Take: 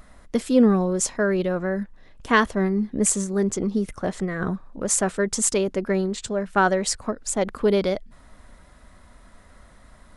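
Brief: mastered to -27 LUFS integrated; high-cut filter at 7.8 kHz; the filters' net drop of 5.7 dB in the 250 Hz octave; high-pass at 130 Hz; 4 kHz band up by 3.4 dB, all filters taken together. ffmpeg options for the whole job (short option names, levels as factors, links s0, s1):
-af "highpass=130,lowpass=7800,equalizer=f=250:t=o:g=-7,equalizer=f=4000:t=o:g=5,volume=0.841"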